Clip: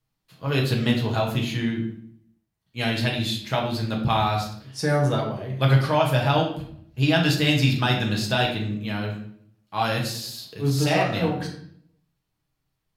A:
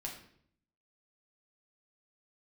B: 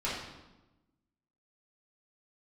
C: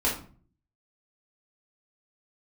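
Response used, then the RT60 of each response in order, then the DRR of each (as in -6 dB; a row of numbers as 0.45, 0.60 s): A; 0.60, 1.0, 0.45 s; -1.5, -9.5, -6.0 dB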